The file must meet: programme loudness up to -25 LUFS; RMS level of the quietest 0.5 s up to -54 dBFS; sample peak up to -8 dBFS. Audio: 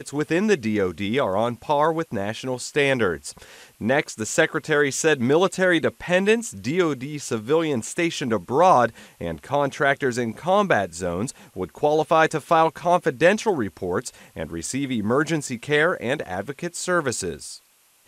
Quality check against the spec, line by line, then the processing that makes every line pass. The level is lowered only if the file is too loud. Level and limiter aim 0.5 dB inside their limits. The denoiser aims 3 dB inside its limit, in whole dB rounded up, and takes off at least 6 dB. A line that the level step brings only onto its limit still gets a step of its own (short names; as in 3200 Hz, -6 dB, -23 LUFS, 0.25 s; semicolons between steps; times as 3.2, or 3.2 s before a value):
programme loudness -22.5 LUFS: fail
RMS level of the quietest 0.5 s -58 dBFS: OK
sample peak -4.0 dBFS: fail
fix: gain -3 dB; limiter -8.5 dBFS